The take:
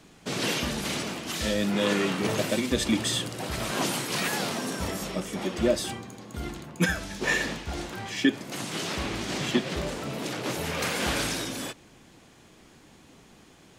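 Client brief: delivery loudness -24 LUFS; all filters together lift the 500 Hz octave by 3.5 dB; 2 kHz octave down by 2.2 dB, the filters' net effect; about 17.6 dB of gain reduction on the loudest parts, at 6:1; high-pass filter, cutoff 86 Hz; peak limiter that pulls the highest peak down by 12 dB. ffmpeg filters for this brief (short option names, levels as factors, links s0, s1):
-af "highpass=86,equalizer=f=500:t=o:g=4.5,equalizer=f=2000:t=o:g=-3,acompressor=threshold=0.0158:ratio=6,volume=10.6,alimiter=limit=0.178:level=0:latency=1"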